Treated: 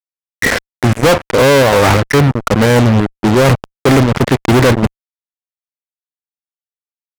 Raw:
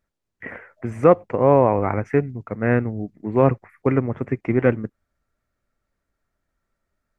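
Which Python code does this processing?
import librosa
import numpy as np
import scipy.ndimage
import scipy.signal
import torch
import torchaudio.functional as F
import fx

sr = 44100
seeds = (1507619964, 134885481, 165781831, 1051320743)

y = fx.chopper(x, sr, hz=2.9, depth_pct=60, duty_pct=70)
y = fx.fuzz(y, sr, gain_db=39.0, gate_db=-38.0)
y = y * librosa.db_to_amplitude(6.5)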